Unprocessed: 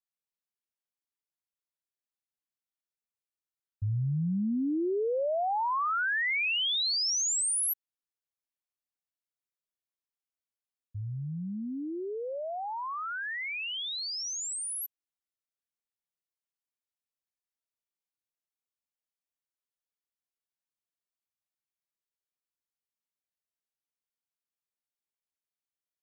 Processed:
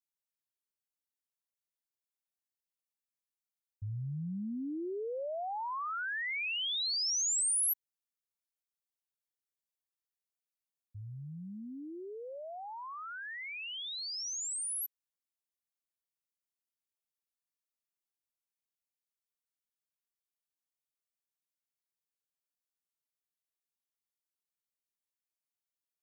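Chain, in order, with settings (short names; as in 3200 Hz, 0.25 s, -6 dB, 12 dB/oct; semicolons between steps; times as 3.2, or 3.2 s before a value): high shelf 4500 Hz +8.5 dB; gain -8.5 dB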